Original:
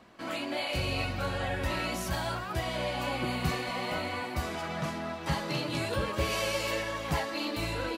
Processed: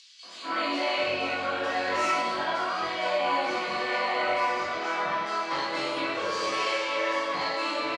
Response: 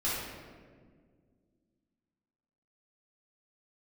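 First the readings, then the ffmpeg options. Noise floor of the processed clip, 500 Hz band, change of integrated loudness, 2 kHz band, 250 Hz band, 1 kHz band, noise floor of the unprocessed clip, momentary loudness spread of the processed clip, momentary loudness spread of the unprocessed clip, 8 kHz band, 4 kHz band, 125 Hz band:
−42 dBFS, +4.5 dB, +4.5 dB, +5.5 dB, −1.0 dB, +8.0 dB, −38 dBFS, 3 LU, 4 LU, −1.5 dB, +3.5 dB, −17.0 dB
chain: -filter_complex "[0:a]aeval=exprs='clip(val(0),-1,0.0631)':channel_layout=same,alimiter=limit=-24dB:level=0:latency=1:release=218,lowpass=frequency=6500:width=0.5412,lowpass=frequency=6500:width=1.3066,asplit=2[link_01][link_02];[link_02]adelay=22,volume=-3.5dB[link_03];[link_01][link_03]amix=inputs=2:normalize=0,acrossover=split=3800[link_04][link_05];[link_04]adelay=230[link_06];[link_06][link_05]amix=inputs=2:normalize=0[link_07];[1:a]atrim=start_sample=2205,atrim=end_sample=6174,asetrate=38808,aresample=44100[link_08];[link_07][link_08]afir=irnorm=-1:irlink=0,acompressor=mode=upward:threshold=-40dB:ratio=2.5,highpass=450" -ar 32000 -c:a libmp3lame -b:a 80k

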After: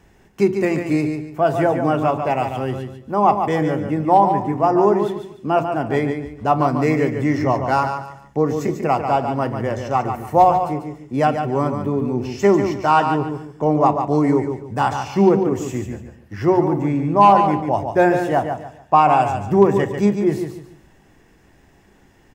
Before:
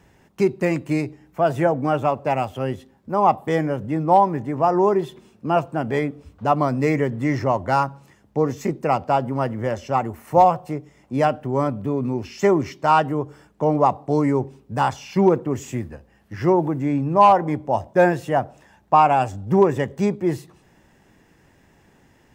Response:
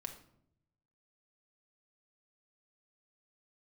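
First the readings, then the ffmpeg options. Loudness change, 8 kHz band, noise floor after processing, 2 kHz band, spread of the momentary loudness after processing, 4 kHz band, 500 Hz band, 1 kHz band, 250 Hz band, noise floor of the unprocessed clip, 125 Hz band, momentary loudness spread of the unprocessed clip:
+2.5 dB, +2.0 dB, −52 dBFS, +2.0 dB, 10 LU, +2.0 dB, +2.0 dB, +2.5 dB, +3.5 dB, −57 dBFS, +2.0 dB, 11 LU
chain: -filter_complex "[0:a]aecho=1:1:144|288|432:0.447|0.125|0.035,asplit=2[link_01][link_02];[1:a]atrim=start_sample=2205,asetrate=70560,aresample=44100,lowshelf=frequency=65:gain=10[link_03];[link_02][link_03]afir=irnorm=-1:irlink=0,volume=5dB[link_04];[link_01][link_04]amix=inputs=2:normalize=0,volume=-3.5dB"

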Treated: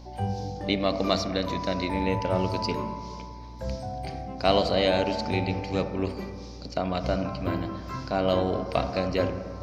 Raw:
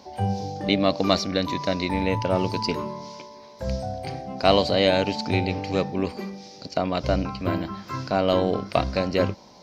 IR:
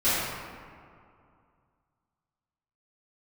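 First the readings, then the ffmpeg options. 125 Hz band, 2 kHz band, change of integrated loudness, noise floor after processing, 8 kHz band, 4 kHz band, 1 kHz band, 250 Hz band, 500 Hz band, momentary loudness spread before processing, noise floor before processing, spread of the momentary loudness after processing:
−2.5 dB, −3.5 dB, −3.0 dB, −41 dBFS, can't be measured, −4.0 dB, −2.5 dB, −3.5 dB, −3.0 dB, 13 LU, −46 dBFS, 12 LU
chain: -filter_complex "[0:a]aeval=exprs='val(0)+0.01*(sin(2*PI*60*n/s)+sin(2*PI*2*60*n/s)/2+sin(2*PI*3*60*n/s)/3+sin(2*PI*4*60*n/s)/4+sin(2*PI*5*60*n/s)/5)':channel_layout=same,asplit=2[link_01][link_02];[1:a]atrim=start_sample=2205,lowpass=2000,adelay=32[link_03];[link_02][link_03]afir=irnorm=-1:irlink=0,volume=-22.5dB[link_04];[link_01][link_04]amix=inputs=2:normalize=0,volume=-4dB"

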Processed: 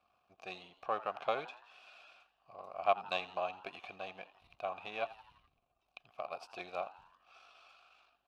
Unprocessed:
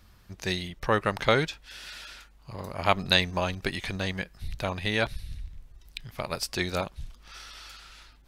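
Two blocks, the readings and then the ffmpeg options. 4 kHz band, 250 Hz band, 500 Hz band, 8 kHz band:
−18.5 dB, −22.5 dB, −9.0 dB, below −25 dB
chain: -filter_complex "[0:a]aeval=exprs='if(lt(val(0),0),0.447*val(0),val(0))':channel_layout=same,asplit=3[link_01][link_02][link_03];[link_01]bandpass=frequency=730:width_type=q:width=8,volume=0dB[link_04];[link_02]bandpass=frequency=1090:width_type=q:width=8,volume=-6dB[link_05];[link_03]bandpass=frequency=2440:width_type=q:width=8,volume=-9dB[link_06];[link_04][link_05][link_06]amix=inputs=3:normalize=0,asplit=6[link_07][link_08][link_09][link_10][link_11][link_12];[link_08]adelay=84,afreqshift=100,volume=-17dB[link_13];[link_09]adelay=168,afreqshift=200,volume=-22.4dB[link_14];[link_10]adelay=252,afreqshift=300,volume=-27.7dB[link_15];[link_11]adelay=336,afreqshift=400,volume=-33.1dB[link_16];[link_12]adelay=420,afreqshift=500,volume=-38.4dB[link_17];[link_07][link_13][link_14][link_15][link_16][link_17]amix=inputs=6:normalize=0,volume=2.5dB"

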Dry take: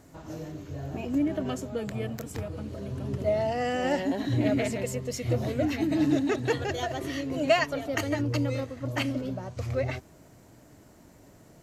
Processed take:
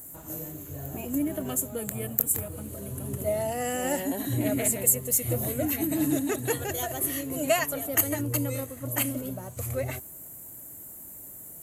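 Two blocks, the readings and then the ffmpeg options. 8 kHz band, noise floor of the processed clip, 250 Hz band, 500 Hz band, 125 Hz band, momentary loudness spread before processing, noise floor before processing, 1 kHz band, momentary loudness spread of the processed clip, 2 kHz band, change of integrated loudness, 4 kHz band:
+15.5 dB, −44 dBFS, −2.0 dB, −2.0 dB, −2.0 dB, 12 LU, −55 dBFS, −2.0 dB, 16 LU, −2.0 dB, +1.5 dB, −2.5 dB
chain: -af "aexciter=amount=10.1:drive=10:freq=8000,volume=-2dB"

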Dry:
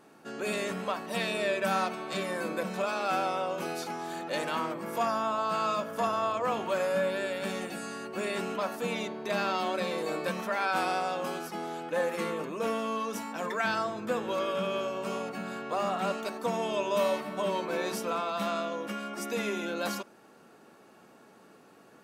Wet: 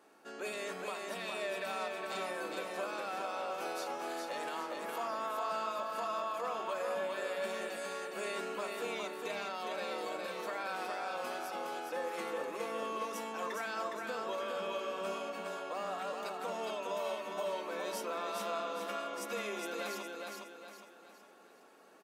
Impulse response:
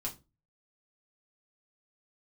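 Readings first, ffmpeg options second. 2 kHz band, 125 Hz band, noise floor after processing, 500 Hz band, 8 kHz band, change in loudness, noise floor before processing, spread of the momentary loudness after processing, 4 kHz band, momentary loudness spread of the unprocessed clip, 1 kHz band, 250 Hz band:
−6.0 dB, below −15 dB, −58 dBFS, −6.5 dB, −5.0 dB, −7.0 dB, −57 dBFS, 4 LU, −6.0 dB, 7 LU, −6.5 dB, −11.5 dB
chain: -af "highpass=340,alimiter=level_in=1dB:limit=-24dB:level=0:latency=1:release=187,volume=-1dB,aecho=1:1:412|824|1236|1648|2060:0.668|0.274|0.112|0.0461|0.0189,volume=-5dB"

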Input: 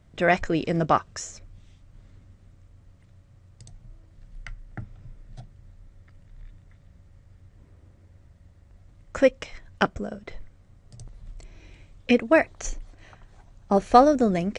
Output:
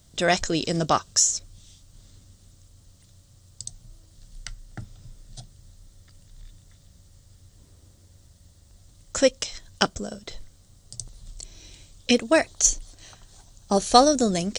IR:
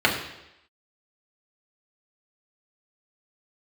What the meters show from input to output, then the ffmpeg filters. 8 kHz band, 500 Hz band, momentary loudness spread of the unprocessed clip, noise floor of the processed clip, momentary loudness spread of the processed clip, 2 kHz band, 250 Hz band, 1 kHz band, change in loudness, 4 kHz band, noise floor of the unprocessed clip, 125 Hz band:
+17.5 dB, −1.0 dB, 24 LU, −56 dBFS, 21 LU, −1.0 dB, −1.0 dB, −1.0 dB, +0.5 dB, +11.5 dB, −56 dBFS, −1.0 dB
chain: -af "aexciter=amount=6:drive=6.6:freq=3300,volume=-1dB"

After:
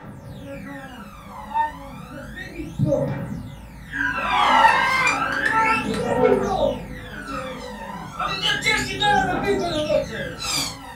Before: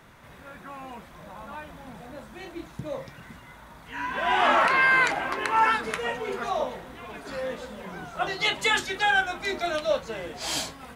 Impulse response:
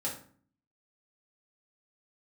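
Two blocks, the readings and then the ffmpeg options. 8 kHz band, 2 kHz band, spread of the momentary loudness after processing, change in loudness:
+6.0 dB, +2.5 dB, 19 LU, +4.0 dB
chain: -filter_complex "[0:a]aphaser=in_gain=1:out_gain=1:delay=1.1:decay=0.8:speed=0.32:type=triangular,asplit=2[link_01][link_02];[link_02]aeval=exprs='0.211*(abs(mod(val(0)/0.211+3,4)-2)-1)':channel_layout=same,volume=-6.5dB[link_03];[link_01][link_03]amix=inputs=2:normalize=0[link_04];[1:a]atrim=start_sample=2205,atrim=end_sample=4410[link_05];[link_04][link_05]afir=irnorm=-1:irlink=0,volume=-3dB"

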